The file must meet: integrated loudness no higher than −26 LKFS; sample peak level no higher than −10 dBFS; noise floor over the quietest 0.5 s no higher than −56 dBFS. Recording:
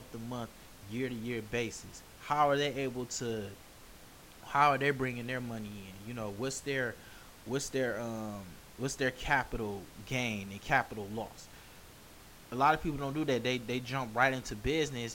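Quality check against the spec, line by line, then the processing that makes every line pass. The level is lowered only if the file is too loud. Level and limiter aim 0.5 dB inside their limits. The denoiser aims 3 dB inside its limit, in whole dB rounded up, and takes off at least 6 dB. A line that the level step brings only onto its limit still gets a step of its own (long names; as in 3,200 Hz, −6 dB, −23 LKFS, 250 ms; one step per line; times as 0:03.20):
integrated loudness −34.0 LKFS: in spec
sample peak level −12.5 dBFS: in spec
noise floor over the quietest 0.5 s −54 dBFS: out of spec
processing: broadband denoise 6 dB, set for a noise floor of −54 dBFS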